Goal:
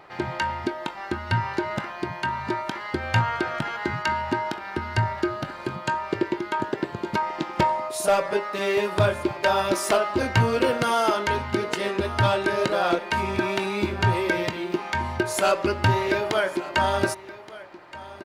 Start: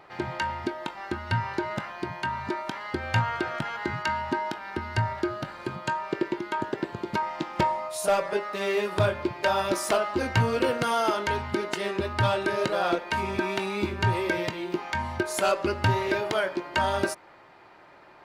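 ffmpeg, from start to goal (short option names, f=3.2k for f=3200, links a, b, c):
-af "aecho=1:1:1173:0.126,volume=3dB"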